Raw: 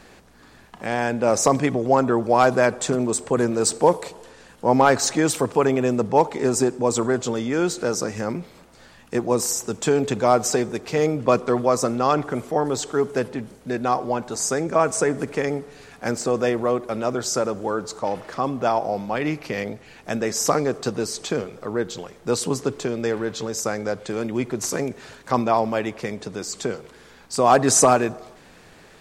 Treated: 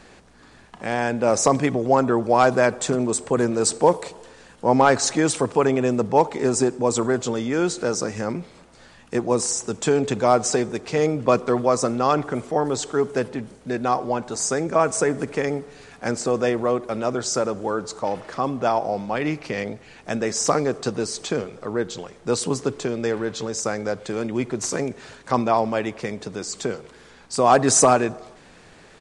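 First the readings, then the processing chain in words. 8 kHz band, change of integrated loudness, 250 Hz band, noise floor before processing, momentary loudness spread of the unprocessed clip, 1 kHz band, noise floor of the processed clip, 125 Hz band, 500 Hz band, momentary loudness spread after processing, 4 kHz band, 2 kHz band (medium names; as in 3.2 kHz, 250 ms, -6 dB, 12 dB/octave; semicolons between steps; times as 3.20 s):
0.0 dB, 0.0 dB, 0.0 dB, -49 dBFS, 11 LU, 0.0 dB, -49 dBFS, 0.0 dB, 0.0 dB, 11 LU, 0.0 dB, 0.0 dB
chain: resampled via 22.05 kHz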